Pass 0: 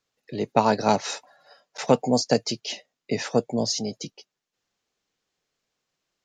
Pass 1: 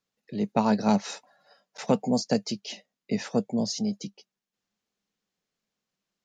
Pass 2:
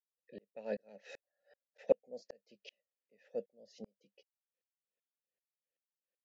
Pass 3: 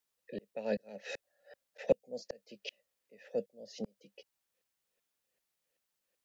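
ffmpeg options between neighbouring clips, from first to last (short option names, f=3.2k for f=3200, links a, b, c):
-af "equalizer=f=200:w=3.5:g=13,volume=-6dB"
-filter_complex "[0:a]asplit=3[a][b][c];[a]bandpass=f=530:t=q:w=8,volume=0dB[d];[b]bandpass=f=1.84k:t=q:w=8,volume=-6dB[e];[c]bandpass=f=2.48k:t=q:w=8,volume=-9dB[f];[d][e][f]amix=inputs=3:normalize=0,aeval=exprs='val(0)*pow(10,-39*if(lt(mod(-2.6*n/s,1),2*abs(-2.6)/1000),1-mod(-2.6*n/s,1)/(2*abs(-2.6)/1000),(mod(-2.6*n/s,1)-2*abs(-2.6)/1000)/(1-2*abs(-2.6)/1000))/20)':c=same,volume=4.5dB"
-filter_complex "[0:a]acrossover=split=190|3000[a][b][c];[b]acompressor=threshold=-54dB:ratio=1.5[d];[a][d][c]amix=inputs=3:normalize=0,volume=11dB"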